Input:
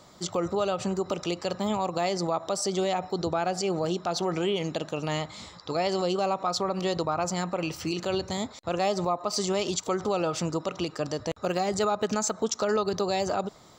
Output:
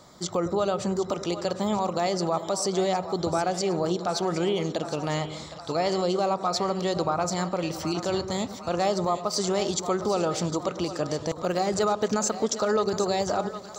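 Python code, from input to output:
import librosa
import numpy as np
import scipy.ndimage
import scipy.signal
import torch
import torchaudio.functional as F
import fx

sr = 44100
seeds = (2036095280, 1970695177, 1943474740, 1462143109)

p1 = fx.peak_eq(x, sr, hz=2700.0, db=-6.5, octaves=0.34)
p2 = p1 + fx.echo_split(p1, sr, split_hz=540.0, low_ms=104, high_ms=762, feedback_pct=52, wet_db=-11.0, dry=0)
y = F.gain(torch.from_numpy(p2), 1.5).numpy()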